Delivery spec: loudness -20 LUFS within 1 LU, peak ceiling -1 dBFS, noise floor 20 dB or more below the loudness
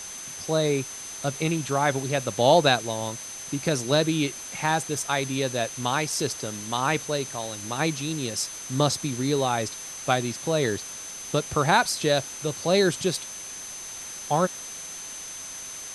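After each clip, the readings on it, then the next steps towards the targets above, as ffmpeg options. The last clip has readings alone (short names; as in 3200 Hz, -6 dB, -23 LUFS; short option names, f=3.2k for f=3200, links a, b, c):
steady tone 6200 Hz; tone level -37 dBFS; noise floor -38 dBFS; noise floor target -46 dBFS; loudness -26.0 LUFS; peak -5.0 dBFS; loudness target -20.0 LUFS
-> -af "bandreject=f=6.2k:w=30"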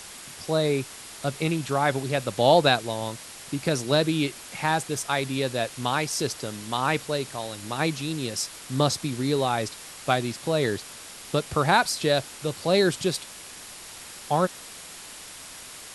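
steady tone none; noise floor -43 dBFS; noise floor target -46 dBFS
-> -af "afftdn=nr=6:nf=-43"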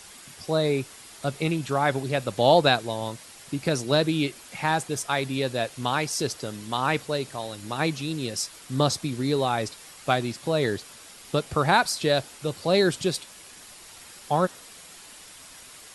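noise floor -47 dBFS; loudness -26.0 LUFS; peak -5.0 dBFS; loudness target -20.0 LUFS
-> -af "volume=6dB,alimiter=limit=-1dB:level=0:latency=1"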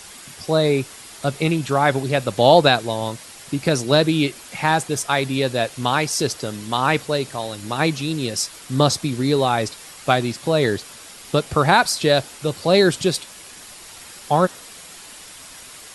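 loudness -20.0 LUFS; peak -1.0 dBFS; noise floor -41 dBFS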